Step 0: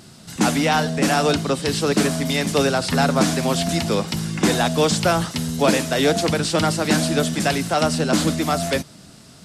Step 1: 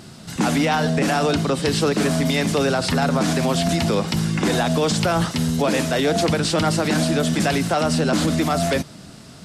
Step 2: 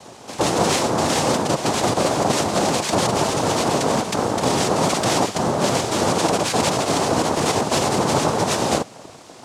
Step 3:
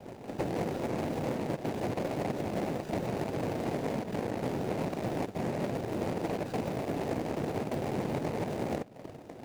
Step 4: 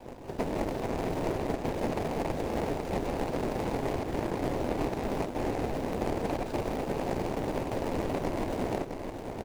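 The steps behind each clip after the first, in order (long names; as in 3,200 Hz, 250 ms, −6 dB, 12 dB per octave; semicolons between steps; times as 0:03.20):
high-shelf EQ 4,600 Hz −5.5 dB; brickwall limiter −15.5 dBFS, peak gain reduction 10.5 dB; level +4.5 dB
cochlear-implant simulation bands 2
running median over 41 samples; downward compressor 2.5 to 1, threshold −35 dBFS, peak gain reduction 12.5 dB
ring modulation 130 Hz; single-tap delay 660 ms −6.5 dB; level +4 dB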